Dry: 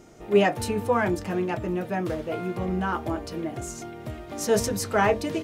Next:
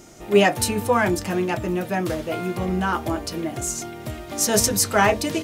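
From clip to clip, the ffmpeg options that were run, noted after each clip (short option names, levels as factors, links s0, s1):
-af "highshelf=f=3500:g=10,bandreject=f=450:w=12,volume=1.5"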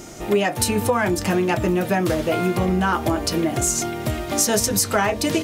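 -af "acompressor=threshold=0.0631:ratio=10,volume=2.51"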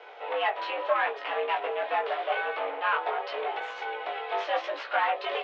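-af "aeval=exprs='clip(val(0),-1,0.0794)':c=same,highpass=f=430:t=q:w=0.5412,highpass=f=430:t=q:w=1.307,lowpass=f=3300:t=q:w=0.5176,lowpass=f=3300:t=q:w=0.7071,lowpass=f=3300:t=q:w=1.932,afreqshift=100,flanger=delay=16.5:depth=3.9:speed=0.81"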